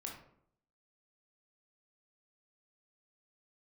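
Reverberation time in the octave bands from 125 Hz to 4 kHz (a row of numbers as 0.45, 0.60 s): 0.80, 0.75, 0.70, 0.65, 0.50, 0.35 s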